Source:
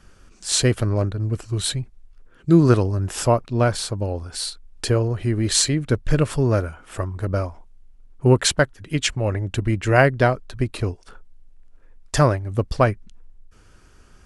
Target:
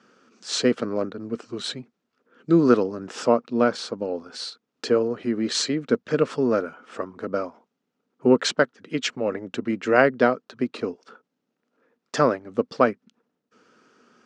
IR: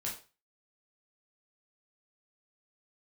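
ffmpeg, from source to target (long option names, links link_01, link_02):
-af "highpass=frequency=190:width=0.5412,highpass=frequency=190:width=1.3066,equalizer=frequency=240:width_type=q:width=4:gain=8,equalizer=frequency=470:width_type=q:width=4:gain=8,equalizer=frequency=1300:width_type=q:width=4:gain=6,lowpass=frequency=6300:width=0.5412,lowpass=frequency=6300:width=1.3066,volume=-4dB"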